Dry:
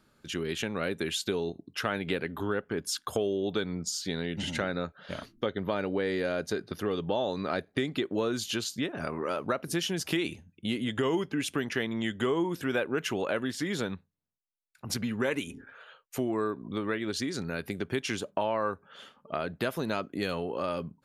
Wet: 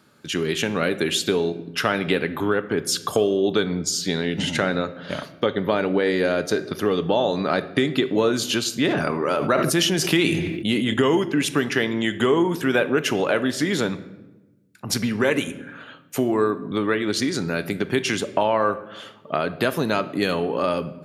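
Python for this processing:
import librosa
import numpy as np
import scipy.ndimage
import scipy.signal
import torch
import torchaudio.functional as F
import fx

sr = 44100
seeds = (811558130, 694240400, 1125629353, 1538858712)

y = scipy.signal.sosfilt(scipy.signal.butter(2, 110.0, 'highpass', fs=sr, output='sos'), x)
y = fx.room_shoebox(y, sr, seeds[0], volume_m3=540.0, walls='mixed', distance_m=0.33)
y = fx.sustainer(y, sr, db_per_s=29.0, at=(8.71, 10.94))
y = y * librosa.db_to_amplitude(9.0)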